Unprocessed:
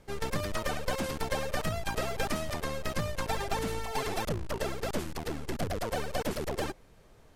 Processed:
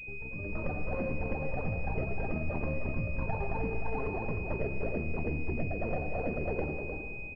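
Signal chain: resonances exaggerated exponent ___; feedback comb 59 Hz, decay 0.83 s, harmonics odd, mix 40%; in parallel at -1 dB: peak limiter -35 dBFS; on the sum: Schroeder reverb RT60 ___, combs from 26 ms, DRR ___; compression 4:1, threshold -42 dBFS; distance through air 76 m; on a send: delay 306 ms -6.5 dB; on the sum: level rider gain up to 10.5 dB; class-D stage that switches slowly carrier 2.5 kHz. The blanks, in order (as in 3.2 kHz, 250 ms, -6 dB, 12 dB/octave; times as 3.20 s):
2, 1.1 s, 8 dB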